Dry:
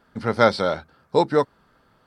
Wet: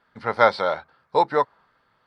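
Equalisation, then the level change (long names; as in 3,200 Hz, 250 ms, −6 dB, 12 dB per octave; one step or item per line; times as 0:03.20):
octave-band graphic EQ 125/500/1,000/2,000/4,000 Hz +4/+4/+8/+10/+8 dB
dynamic equaliser 790 Hz, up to +8 dB, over −33 dBFS, Q 0.74
−13.5 dB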